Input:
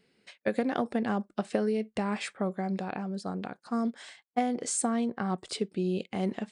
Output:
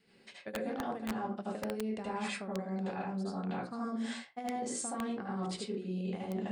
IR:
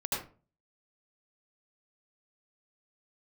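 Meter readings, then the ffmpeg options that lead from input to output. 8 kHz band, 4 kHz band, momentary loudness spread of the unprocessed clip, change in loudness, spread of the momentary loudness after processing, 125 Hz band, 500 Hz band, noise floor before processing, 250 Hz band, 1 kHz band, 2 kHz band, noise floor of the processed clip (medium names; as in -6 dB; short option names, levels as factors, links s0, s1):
-7.0 dB, -4.0 dB, 6 LU, -6.0 dB, 3 LU, -4.0 dB, -7.0 dB, -76 dBFS, -6.0 dB, -5.0 dB, -4.5 dB, -61 dBFS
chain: -filter_complex "[0:a]adynamicequalizer=threshold=0.00631:dfrequency=530:dqfactor=5.3:tfrequency=530:tqfactor=5.3:attack=5:release=100:ratio=0.375:range=2:mode=cutabove:tftype=bell,bandreject=f=60:t=h:w=6,bandreject=f=120:t=h:w=6,bandreject=f=180:t=h:w=6,bandreject=f=240:t=h:w=6,bandreject=f=300:t=h:w=6,bandreject=f=360:t=h:w=6,bandreject=f=420:t=h:w=6,bandreject=f=480:t=h:w=6,bandreject=f=540:t=h:w=6[s0];[1:a]atrim=start_sample=2205,afade=t=out:st=0.42:d=0.01,atrim=end_sample=18963[s1];[s0][s1]afir=irnorm=-1:irlink=0,aeval=exprs='(mod(4.47*val(0)+1,2)-1)/4.47':c=same,areverse,acompressor=threshold=0.02:ratio=10,areverse"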